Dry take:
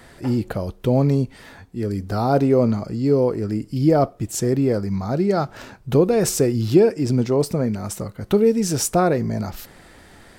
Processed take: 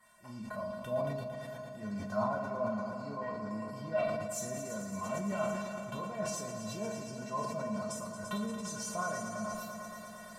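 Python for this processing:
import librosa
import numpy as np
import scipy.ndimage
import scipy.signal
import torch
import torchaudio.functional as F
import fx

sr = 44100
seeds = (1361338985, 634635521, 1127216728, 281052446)

y = fx.recorder_agc(x, sr, target_db=-6.0, rise_db_per_s=7.2, max_gain_db=30)
y = fx.graphic_eq(y, sr, hz=(250, 1000, 4000), db=(-11, 12, -5))
y = fx.clip_hard(y, sr, threshold_db=-12.0, at=(3.21, 5.39))
y = fx.env_lowpass_down(y, sr, base_hz=2200.0, full_db=-11.5)
y = fx.high_shelf(y, sr, hz=5700.0, db=11.0)
y = fx.comb_fb(y, sr, f0_hz=210.0, decay_s=0.18, harmonics='odd', damping=0.0, mix_pct=100)
y = fx.echo_heads(y, sr, ms=113, heads='all three', feedback_pct=73, wet_db=-13.5)
y = fx.rev_schroeder(y, sr, rt60_s=0.37, comb_ms=25, drr_db=4.5)
y = fx.sustainer(y, sr, db_per_s=34.0)
y = y * 10.0 ** (-7.0 / 20.0)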